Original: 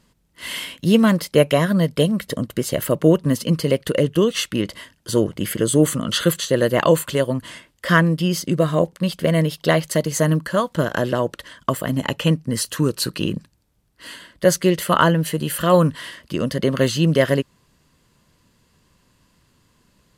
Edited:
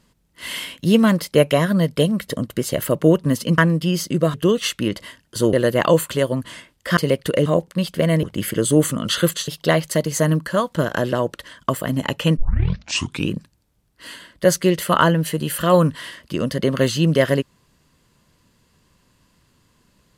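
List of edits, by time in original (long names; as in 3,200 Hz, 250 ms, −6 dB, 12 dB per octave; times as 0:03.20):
0:03.58–0:04.07: swap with 0:07.95–0:08.71
0:05.26–0:06.51: move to 0:09.48
0:12.37: tape start 0.93 s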